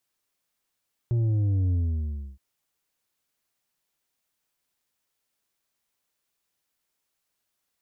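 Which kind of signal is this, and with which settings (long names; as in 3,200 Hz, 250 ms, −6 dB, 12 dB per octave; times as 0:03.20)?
bass drop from 120 Hz, over 1.27 s, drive 6 dB, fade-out 0.66 s, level −21.5 dB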